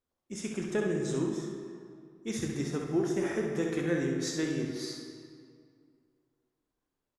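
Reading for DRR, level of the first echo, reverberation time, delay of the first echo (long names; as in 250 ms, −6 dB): 0.0 dB, −5.5 dB, 2.2 s, 65 ms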